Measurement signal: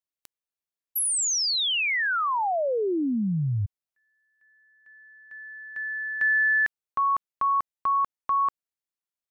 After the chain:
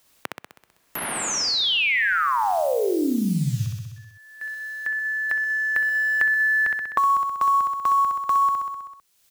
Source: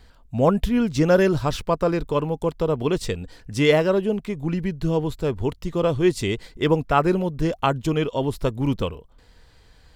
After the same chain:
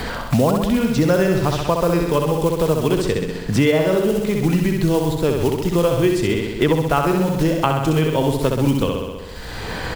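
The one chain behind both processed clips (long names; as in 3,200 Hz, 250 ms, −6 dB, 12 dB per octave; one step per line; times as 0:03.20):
one scale factor per block 5 bits
on a send: repeating echo 64 ms, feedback 56%, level −4 dB
on the sum: multiband upward and downward compressor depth 100%
level +1.5 dB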